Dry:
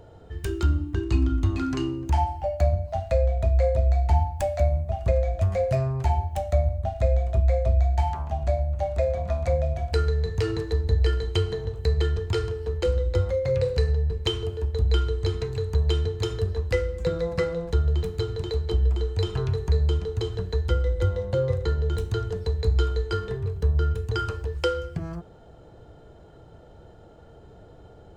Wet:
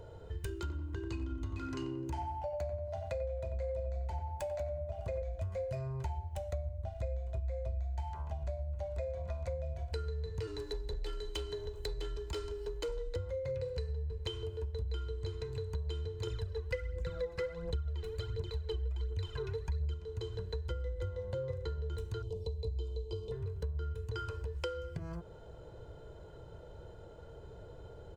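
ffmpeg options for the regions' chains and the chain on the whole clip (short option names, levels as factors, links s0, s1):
-filter_complex "[0:a]asettb=1/sr,asplit=3[s0][s1][s2];[s0]atrim=end=0.604[s3];[s1]atrim=start=0.6:end=5.22,asetpts=PTS-STARTPTS,afade=t=in:d=0.004:c=qsin,afade=t=out:st=4.616:d=0.004:c=qsin,highpass=f=130:p=1,asplit=2[s4][s5];[s5]adelay=91,lowpass=f=1500:p=1,volume=0.562,asplit=2[s6][s7];[s7]adelay=91,lowpass=f=1500:p=1,volume=0.53,asplit=2[s8][s9];[s9]adelay=91,lowpass=f=1500:p=1,volume=0.53,asplit=2[s10][s11];[s11]adelay=91,lowpass=f=1500:p=1,volume=0.53,asplit=2[s12][s13];[s13]adelay=91,lowpass=f=1500:p=1,volume=0.53,asplit=2[s14][s15];[s15]adelay=91,lowpass=f=1500:p=1,volume=0.53,asplit=2[s16][s17];[s17]adelay=91,lowpass=f=1500:p=1,volume=0.53[s18];[s4][s6][s8][s10][s12][s14][s16][s18]amix=inputs=8:normalize=0,atrim=end_sample=203742[s19];[s2]atrim=start=5.216[s20];[s3][s19]acrossfade=d=0.004:c1=hsin:c2=qsin[s21];[s21][s20]acrossfade=d=0.004:c1=qsin:c2=hsin,asettb=1/sr,asplit=3[s22][s23][s24];[s22]atrim=end=10.474[s25];[s23]atrim=start=10.47:end=13.16,asetpts=PTS-STARTPTS,afade=t=in:d=0.004:c=qsin,afade=t=out:st=2.686:d=0.004:c=qsin,bass=f=250:g=-5,treble=f=4000:g=5,afreqshift=-29,asoftclip=type=hard:threshold=0.0794[s26];[s24]atrim=start=13.156[s27];[s25][s26]acrossfade=d=0.004:c1=hsin:c2=qsin[s28];[s28][s27]acrossfade=d=0.004:c1=qsin:c2=hsin,asettb=1/sr,asplit=3[s29][s30][s31];[s29]atrim=end=16.274[s32];[s30]atrim=start=16.27:end=19.94,asetpts=PTS-STARTPTS,afade=t=in:d=0.004:c=qsin,afade=t=out:st=3.666:d=0.004:c=qsin,equalizer=f=2000:w=0.81:g=5,aphaser=in_gain=1:out_gain=1:delay=2.8:decay=0.64:speed=1.4:type=triangular[s33];[s31]atrim=start=19.936[s34];[s32][s33]acrossfade=d=0.004:c1=hsin:c2=qsin[s35];[s35][s34]acrossfade=d=0.004:c1=qsin:c2=hsin,asettb=1/sr,asplit=3[s36][s37][s38];[s36]atrim=end=22.224[s39];[s37]atrim=start=22.22:end=23.32,asetpts=PTS-STARTPTS,afade=t=in:d=0.004:c=qsin,afade=t=out:st=1.096:d=0.004:c=qsin,acrossover=split=4500[s40][s41];[s41]acompressor=threshold=0.00355:ratio=4:attack=1:release=60[s42];[s40][s42]amix=inputs=2:normalize=0,asuperstop=centerf=1600:order=4:qfactor=0.76[s43];[s38]atrim=start=23.316[s44];[s39][s43]acrossfade=d=0.004:c1=hsin:c2=qsin[s45];[s45][s44]acrossfade=d=0.004:c1=qsin:c2=hsin,aecho=1:1:2:0.49,acompressor=threshold=0.02:ratio=4,volume=0.668"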